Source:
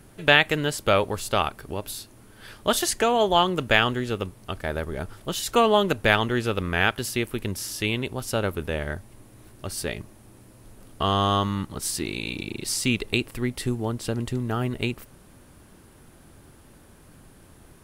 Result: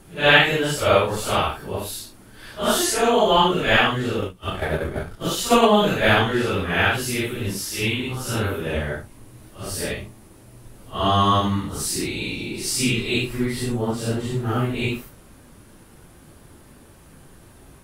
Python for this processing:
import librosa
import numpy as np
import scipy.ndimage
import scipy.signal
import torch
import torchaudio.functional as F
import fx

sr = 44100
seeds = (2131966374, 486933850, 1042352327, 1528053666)

y = fx.phase_scramble(x, sr, seeds[0], window_ms=200)
y = fx.transient(y, sr, attack_db=8, sustain_db=-10, at=(4.21, 5.67))
y = fx.peak_eq(y, sr, hz=610.0, db=-10.5, octaves=0.65, at=(7.88, 8.49))
y = y * 10.0 ** (3.5 / 20.0)